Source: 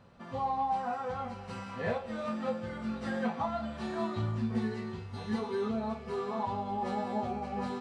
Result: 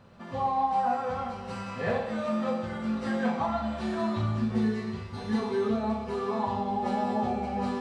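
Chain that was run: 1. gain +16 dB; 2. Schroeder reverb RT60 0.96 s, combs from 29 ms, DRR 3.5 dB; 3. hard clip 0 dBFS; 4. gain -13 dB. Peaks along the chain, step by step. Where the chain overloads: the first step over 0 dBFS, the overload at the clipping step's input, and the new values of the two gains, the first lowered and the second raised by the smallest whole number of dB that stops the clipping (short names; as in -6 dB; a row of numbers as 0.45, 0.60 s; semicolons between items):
-5.0, -3.5, -3.5, -16.5 dBFS; no overload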